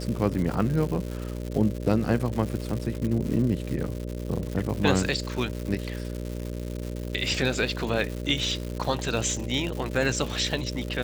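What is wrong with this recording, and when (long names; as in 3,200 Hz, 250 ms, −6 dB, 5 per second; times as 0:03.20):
mains buzz 60 Hz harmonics 10 −33 dBFS
surface crackle 260 per second −31 dBFS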